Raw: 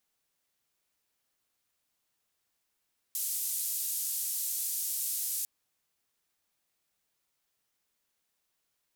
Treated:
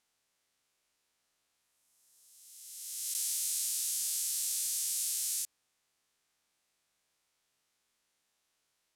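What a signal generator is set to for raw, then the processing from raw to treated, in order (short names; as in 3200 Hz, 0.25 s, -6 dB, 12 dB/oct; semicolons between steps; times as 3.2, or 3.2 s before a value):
noise band 7400–15000 Hz, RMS -33.5 dBFS 2.30 s
spectral swells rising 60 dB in 1.91 s; LPF 10000 Hz 12 dB/oct; low shelf 280 Hz -4 dB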